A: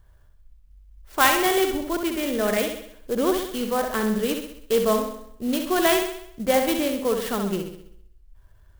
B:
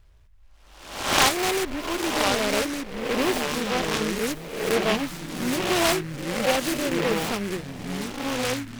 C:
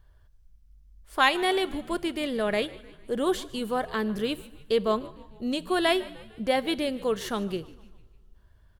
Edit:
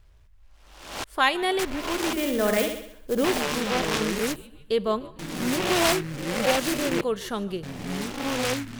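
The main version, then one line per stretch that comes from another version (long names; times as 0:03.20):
B
0:01.04–0:01.59: punch in from C
0:02.13–0:03.24: punch in from A
0:04.36–0:05.19: punch in from C
0:07.01–0:07.63: punch in from C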